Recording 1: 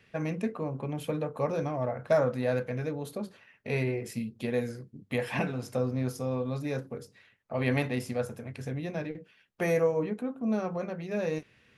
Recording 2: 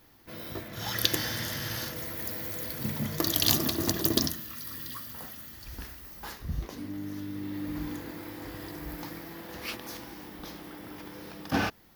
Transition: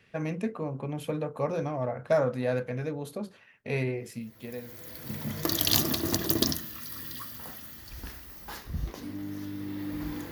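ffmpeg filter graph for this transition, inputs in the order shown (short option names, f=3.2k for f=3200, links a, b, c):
-filter_complex "[0:a]apad=whole_dur=10.31,atrim=end=10.31,atrim=end=5.49,asetpts=PTS-STARTPTS[a];[1:a]atrim=start=1.58:end=8.06,asetpts=PTS-STARTPTS[b];[a][b]acrossfade=d=1.66:c1=qua:c2=qua"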